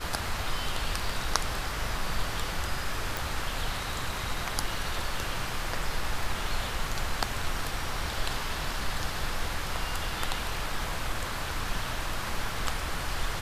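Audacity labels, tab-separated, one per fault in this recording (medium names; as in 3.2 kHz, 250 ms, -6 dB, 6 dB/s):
3.170000	3.170000	pop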